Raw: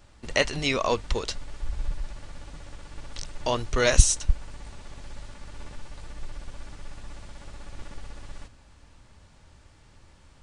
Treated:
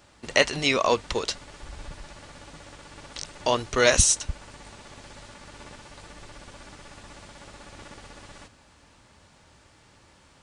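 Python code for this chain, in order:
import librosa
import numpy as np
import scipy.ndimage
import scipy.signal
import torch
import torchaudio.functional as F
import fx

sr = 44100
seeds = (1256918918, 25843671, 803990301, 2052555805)

y = fx.highpass(x, sr, hz=200.0, slope=6)
y = y * librosa.db_to_amplitude(3.5)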